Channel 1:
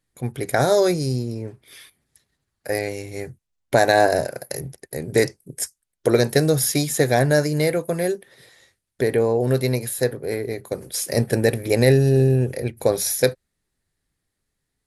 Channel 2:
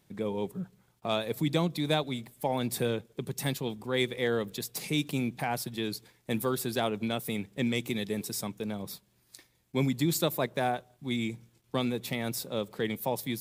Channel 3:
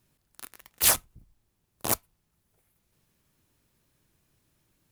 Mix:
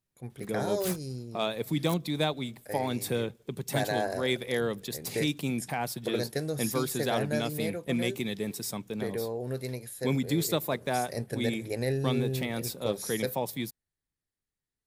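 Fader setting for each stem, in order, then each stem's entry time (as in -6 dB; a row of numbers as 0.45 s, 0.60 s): -14.5 dB, -0.5 dB, -16.5 dB; 0.00 s, 0.30 s, 0.00 s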